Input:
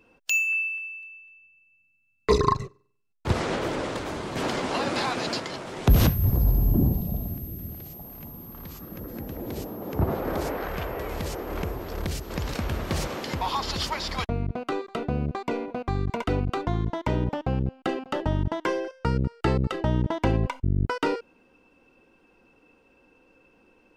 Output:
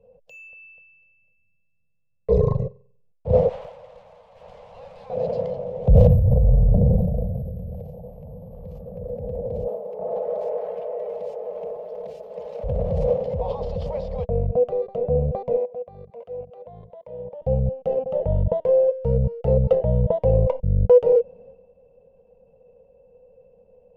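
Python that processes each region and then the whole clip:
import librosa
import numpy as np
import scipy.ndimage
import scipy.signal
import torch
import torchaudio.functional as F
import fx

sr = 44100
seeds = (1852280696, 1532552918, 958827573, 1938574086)

y = fx.chain(x, sr, fx.highpass(hz=1000.0, slope=24),
    fx.tube_stage(drive_db=28.0, bias=0.6), at=(3.49, 5.1))
y = fx.chain(y, sr, fx.highpass(hz=600.0, slope=12),
    fx.comb(ms=4.7, depth=0.72), at=(9.67, 12.64))
y = fx.chain(y, sr, fx.highpass(hz=960.0, slope=6),
    fx.high_shelf(hz=8000.0, db=-10.0),
    fx.level_steps(step_db=21), at=(15.57, 17.42))
y = fx.tilt_shelf(y, sr, db=6.0, hz=850.0)
y = fx.transient(y, sr, attack_db=-4, sustain_db=9)
y = fx.curve_eq(y, sr, hz=(190.0, 330.0, 490.0, 1400.0, 2700.0, 8500.0), db=(0, -29, 14, -22, -14, -25))
y = y * 10.0 ** (-1.0 / 20.0)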